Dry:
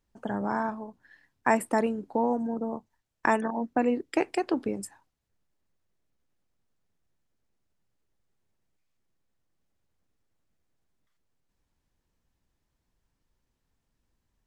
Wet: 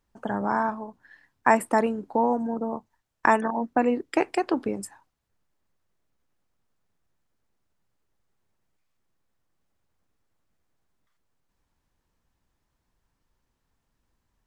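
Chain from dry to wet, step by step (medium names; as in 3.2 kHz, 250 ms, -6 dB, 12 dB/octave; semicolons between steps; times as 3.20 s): peaking EQ 1.1 kHz +4.5 dB 1.4 oct; trim +1.5 dB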